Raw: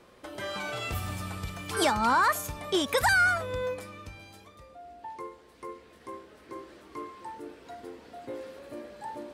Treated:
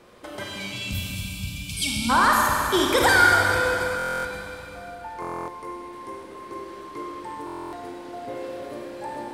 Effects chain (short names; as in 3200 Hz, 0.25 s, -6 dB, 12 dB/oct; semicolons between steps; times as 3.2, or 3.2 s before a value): spectral gain 0.44–2.1, 290–2200 Hz -28 dB; Schroeder reverb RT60 3.2 s, combs from 31 ms, DRR -1.5 dB; stuck buffer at 3.97/5.2/7.45, samples 1024, times 11; gain +3.5 dB